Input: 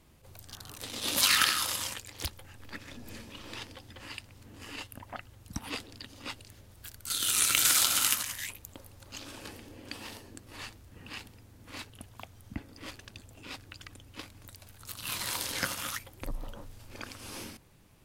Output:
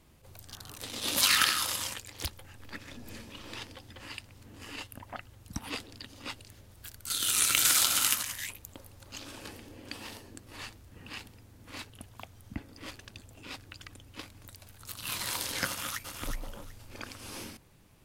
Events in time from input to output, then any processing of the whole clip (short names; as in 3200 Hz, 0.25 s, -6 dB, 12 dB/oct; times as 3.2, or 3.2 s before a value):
15.67–16.22 echo throw 0.37 s, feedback 20%, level -6 dB